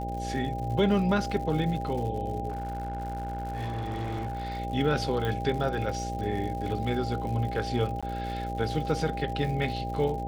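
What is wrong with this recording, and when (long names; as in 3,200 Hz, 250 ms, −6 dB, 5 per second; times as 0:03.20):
mains buzz 60 Hz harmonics 11 −35 dBFS
surface crackle 140 per second −37 dBFS
whistle 800 Hz −34 dBFS
0:02.48–0:04.60: clipping −29 dBFS
0:05.25: click
0:08.01–0:08.03: drop-out 16 ms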